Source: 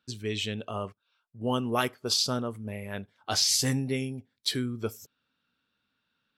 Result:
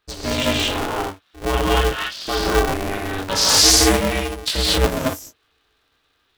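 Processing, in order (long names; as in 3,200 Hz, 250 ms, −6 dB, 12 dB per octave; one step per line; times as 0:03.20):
0:01.69–0:02.27: pair of resonant band-passes 2,200 Hz, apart 0.77 octaves
chorus effect 0.37 Hz, delay 20 ms, depth 5.1 ms
reverb whose tail is shaped and stops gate 260 ms rising, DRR −5.5 dB
ring modulator with a square carrier 190 Hz
level +9 dB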